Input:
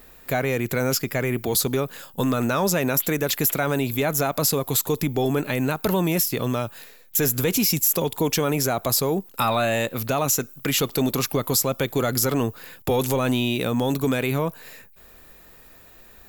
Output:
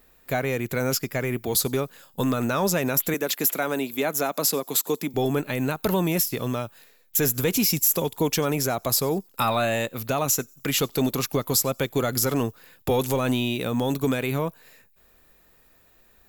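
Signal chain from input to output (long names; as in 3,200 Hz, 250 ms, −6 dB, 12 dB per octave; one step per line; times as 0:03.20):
0:03.14–0:05.14: high-pass filter 190 Hz 24 dB per octave
delay with a high-pass on its return 92 ms, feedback 43%, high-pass 4,600 Hz, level −21 dB
expander for the loud parts 1.5 to 1, over −37 dBFS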